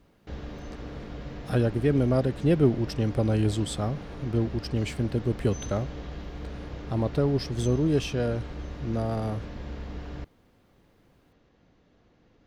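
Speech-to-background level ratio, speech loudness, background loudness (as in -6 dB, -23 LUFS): 12.0 dB, -27.5 LUFS, -39.5 LUFS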